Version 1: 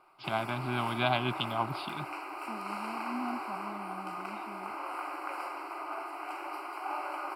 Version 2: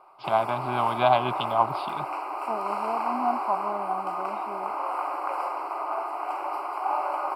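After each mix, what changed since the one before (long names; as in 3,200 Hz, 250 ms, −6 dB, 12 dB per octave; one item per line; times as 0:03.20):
second voice: add flat-topped bell 680 Hz +8 dB 2.7 octaves
master: add flat-topped bell 710 Hz +10.5 dB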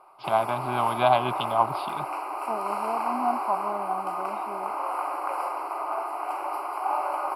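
background: add parametric band 11,000 Hz +13 dB 0.34 octaves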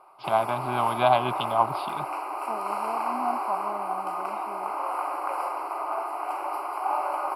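second voice −3.5 dB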